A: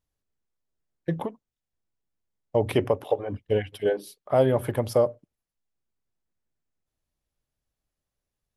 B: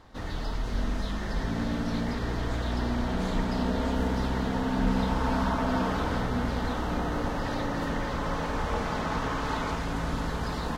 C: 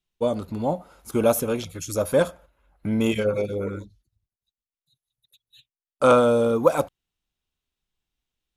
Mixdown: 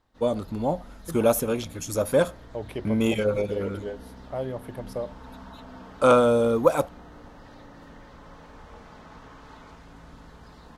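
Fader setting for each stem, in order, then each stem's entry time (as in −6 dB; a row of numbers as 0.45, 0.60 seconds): −11.0, −17.0, −1.0 decibels; 0.00, 0.00, 0.00 seconds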